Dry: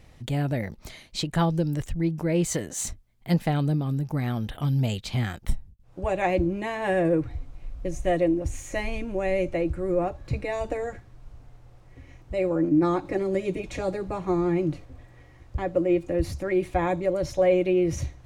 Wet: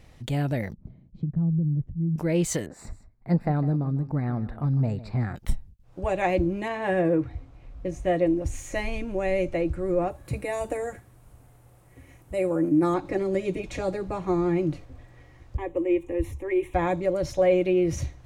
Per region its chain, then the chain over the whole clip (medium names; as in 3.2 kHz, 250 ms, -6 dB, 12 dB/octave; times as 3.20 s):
0.73–2.16 s: tilt EQ -3.5 dB/octave + compression 3:1, threshold -22 dBFS + band-pass filter 160 Hz, Q 1.9
2.66–5.36 s: boxcar filter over 14 samples + delay 154 ms -15.5 dB
6.68–8.26 s: high-pass 47 Hz + treble shelf 4.6 kHz -9 dB + doubling 22 ms -13 dB
10.10–12.94 s: high-pass 87 Hz 6 dB/octave + resonant high shelf 7.4 kHz +12.5 dB, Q 1.5
15.57–16.74 s: static phaser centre 960 Hz, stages 8 + tape noise reduction on one side only decoder only
whole clip: none